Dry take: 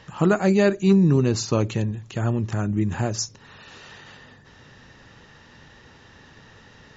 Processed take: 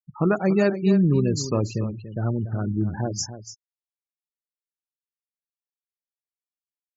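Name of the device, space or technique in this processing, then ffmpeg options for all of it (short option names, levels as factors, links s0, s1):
exciter from parts: -filter_complex "[0:a]asplit=2[s0][s1];[s1]highpass=2600,asoftclip=type=tanh:threshold=0.0251,volume=0.398[s2];[s0][s2]amix=inputs=2:normalize=0,afftfilt=real='re*gte(hypot(re,im),0.0562)':imag='im*gte(hypot(re,im),0.0562)':win_size=1024:overlap=0.75,aecho=1:1:287:0.251,volume=0.794"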